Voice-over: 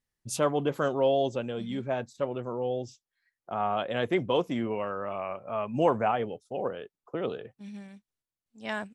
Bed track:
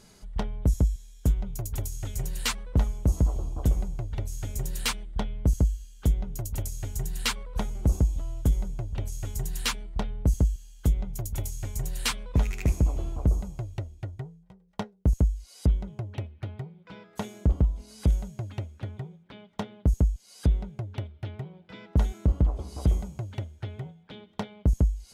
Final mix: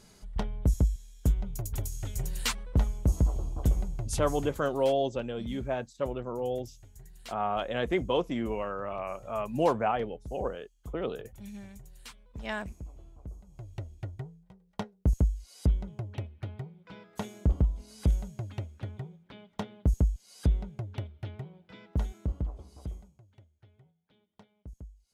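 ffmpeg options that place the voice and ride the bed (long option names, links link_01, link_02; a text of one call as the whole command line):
ffmpeg -i stem1.wav -i stem2.wav -filter_complex "[0:a]adelay=3800,volume=-1.5dB[link_01];[1:a]volume=15.5dB,afade=type=out:start_time=4.34:duration=0.27:silence=0.125893,afade=type=in:start_time=13.46:duration=0.48:silence=0.133352,afade=type=out:start_time=21.1:duration=2.09:silence=0.0891251[link_02];[link_01][link_02]amix=inputs=2:normalize=0" out.wav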